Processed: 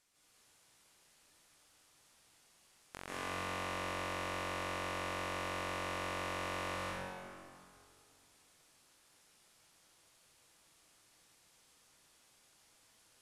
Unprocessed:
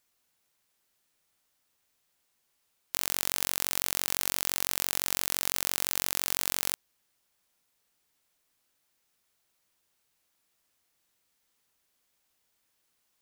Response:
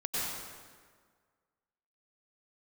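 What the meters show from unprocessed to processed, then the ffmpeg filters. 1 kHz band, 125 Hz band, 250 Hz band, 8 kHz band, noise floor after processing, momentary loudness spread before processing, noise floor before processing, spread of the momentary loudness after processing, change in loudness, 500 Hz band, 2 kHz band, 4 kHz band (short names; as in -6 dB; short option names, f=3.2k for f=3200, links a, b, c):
+2.5 dB, +2.5 dB, +1.0 dB, -20.0 dB, -69 dBFS, 2 LU, -76 dBFS, 11 LU, -11.0 dB, +3.0 dB, -2.5 dB, -11.5 dB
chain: -filter_complex "[0:a]lowpass=f=11k:w=0.5412,lowpass=f=11k:w=1.3066,acrossover=split=2500[a][b];[b]acompressor=threshold=-50dB:ratio=16[c];[a][c]amix=inputs=2:normalize=0,alimiter=level_in=4dB:limit=-24dB:level=0:latency=1,volume=-4dB,asplit=2[d][e];[e]aeval=exprs='clip(val(0),-1,0.0188)':c=same,volume=-9.5dB[f];[d][f]amix=inputs=2:normalize=0[g];[1:a]atrim=start_sample=2205,asetrate=29988,aresample=44100[h];[g][h]afir=irnorm=-1:irlink=0,volume=-1dB"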